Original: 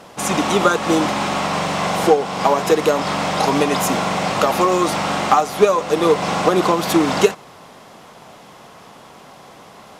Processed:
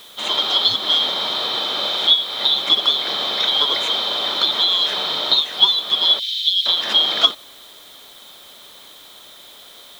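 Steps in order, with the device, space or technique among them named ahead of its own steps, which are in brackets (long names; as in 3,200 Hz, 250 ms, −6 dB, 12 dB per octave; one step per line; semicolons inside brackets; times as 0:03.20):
split-band scrambled radio (band-splitting scrambler in four parts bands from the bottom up 2413; band-pass filter 310–3,100 Hz; white noise bed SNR 28 dB)
0:06.19–0:06.66: inverse Chebyshev band-stop filter 170–670 Hz, stop band 80 dB
level +2.5 dB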